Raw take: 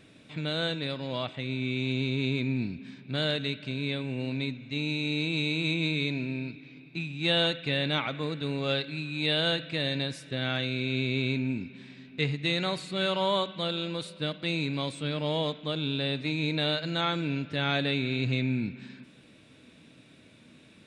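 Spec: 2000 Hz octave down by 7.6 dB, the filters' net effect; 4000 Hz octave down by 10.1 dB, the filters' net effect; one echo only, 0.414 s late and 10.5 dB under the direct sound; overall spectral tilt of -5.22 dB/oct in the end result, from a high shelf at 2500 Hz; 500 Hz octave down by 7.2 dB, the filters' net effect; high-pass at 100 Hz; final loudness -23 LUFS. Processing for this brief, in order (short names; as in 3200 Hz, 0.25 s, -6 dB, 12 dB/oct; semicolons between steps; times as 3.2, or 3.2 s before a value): HPF 100 Hz; bell 500 Hz -8.5 dB; bell 2000 Hz -4 dB; high shelf 2500 Hz -7.5 dB; bell 4000 Hz -4.5 dB; echo 0.414 s -10.5 dB; gain +11.5 dB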